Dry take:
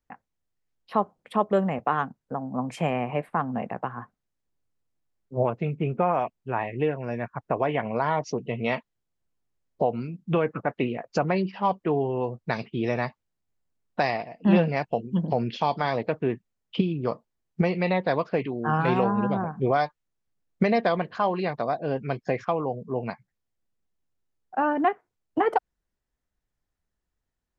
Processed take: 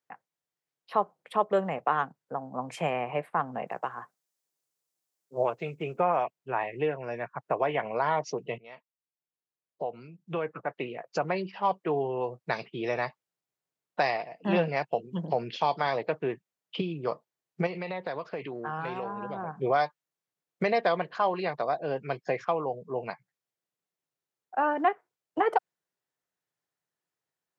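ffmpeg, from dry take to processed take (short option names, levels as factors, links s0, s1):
-filter_complex "[0:a]asettb=1/sr,asplit=3[s0][s1][s2];[s0]atrim=end=3.674[s3];[s1]atrim=start=3.67:end=6,asetpts=PTS-STARTPTS,afade=t=in:d=0.004:c=qsin,afade=t=out:st=2.326:d=0.004:c=qsin,bass=f=250:g=-5,treble=f=4000:g=11[s4];[s2]atrim=start=5.996[s5];[s3][s4]acrossfade=d=0.004:c1=hsin:c2=qsin[s6];[s6][s5]acrossfade=d=0.004:c1=qsin:c2=hsin,asettb=1/sr,asplit=3[s7][s8][s9];[s7]atrim=end=17.664[s10];[s8]atrim=start=17.66:end=19.48,asetpts=PTS-STARTPTS,afade=t=in:d=0.004:c=qsin,afade=t=out:st=1.816:d=0.004:c=qsin,acompressor=threshold=0.0501:ratio=10:attack=3.2:release=140:knee=1:detection=peak[s11];[s9]atrim=start=19.476[s12];[s10][s11]acrossfade=d=0.004:c1=hsin:c2=qsin[s13];[s13][s12]acrossfade=d=0.004:c1=qsin:c2=hsin,asplit=2[s14][s15];[s14]atrim=end=8.58,asetpts=PTS-STARTPTS,afade=t=out:st=8.576:d=0.004:c=hsin:silence=0.0794328[s16];[s15]atrim=start=8.58,asetpts=PTS-STARTPTS,afade=t=in:d=3.38:silence=0.0794328[s17];[s16][s17]concat=n=2:v=0:a=1,highpass=f=150:w=0.5412,highpass=f=150:w=1.3066,equalizer=f=230:t=o:w=0.76:g=-11.5,volume=0.891"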